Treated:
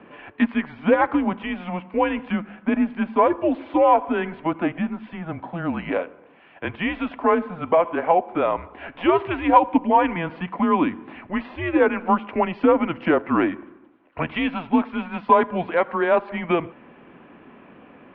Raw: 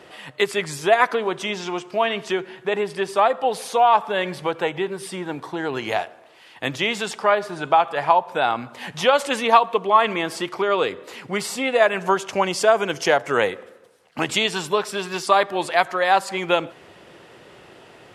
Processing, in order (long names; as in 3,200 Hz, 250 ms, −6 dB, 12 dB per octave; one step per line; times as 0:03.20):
mid-hump overdrive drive 9 dB, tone 1,000 Hz, clips at −1.5 dBFS
single-sideband voice off tune −170 Hz 250–3,200 Hz
hollow resonant body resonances 260/1,000/2,300 Hz, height 7 dB
level −1.5 dB